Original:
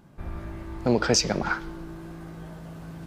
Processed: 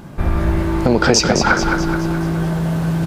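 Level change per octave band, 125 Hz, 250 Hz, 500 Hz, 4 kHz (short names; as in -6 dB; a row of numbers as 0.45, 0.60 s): +16.0, +13.0, +10.0, +8.5 dB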